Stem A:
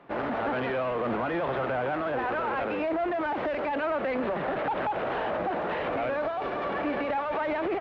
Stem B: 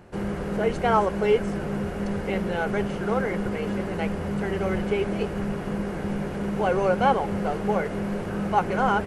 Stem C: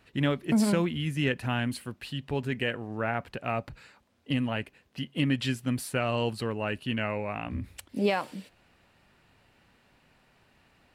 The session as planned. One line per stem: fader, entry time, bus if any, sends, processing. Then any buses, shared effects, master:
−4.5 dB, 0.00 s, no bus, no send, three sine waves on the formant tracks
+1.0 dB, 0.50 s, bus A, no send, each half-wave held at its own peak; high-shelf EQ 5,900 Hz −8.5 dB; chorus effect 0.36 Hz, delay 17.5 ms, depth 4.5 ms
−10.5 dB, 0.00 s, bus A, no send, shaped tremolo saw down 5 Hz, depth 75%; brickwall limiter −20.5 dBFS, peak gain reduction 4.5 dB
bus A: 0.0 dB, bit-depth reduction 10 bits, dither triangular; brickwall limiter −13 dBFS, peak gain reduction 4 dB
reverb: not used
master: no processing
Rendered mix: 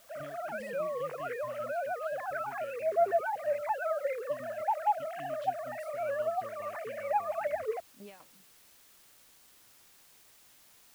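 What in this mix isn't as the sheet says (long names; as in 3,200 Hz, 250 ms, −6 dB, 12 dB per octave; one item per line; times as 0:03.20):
stem B: muted
stem C −10.5 dB → −20.0 dB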